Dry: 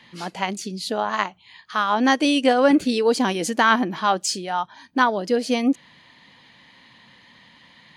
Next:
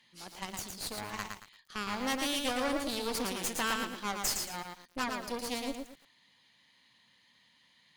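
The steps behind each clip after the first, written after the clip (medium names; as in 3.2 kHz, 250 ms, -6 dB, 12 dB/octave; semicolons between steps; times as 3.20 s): pre-emphasis filter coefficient 0.8; Chebyshev shaper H 8 -13 dB, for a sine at -13.5 dBFS; bit-crushed delay 113 ms, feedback 35%, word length 8-bit, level -4 dB; trim -6 dB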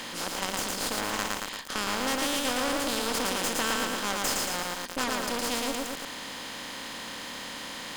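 spectral levelling over time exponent 0.4; in parallel at -3 dB: level held to a coarse grid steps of 21 dB; on the sum: trim -2 dB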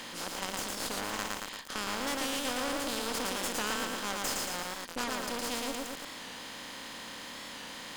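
warped record 45 rpm, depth 100 cents; trim -5 dB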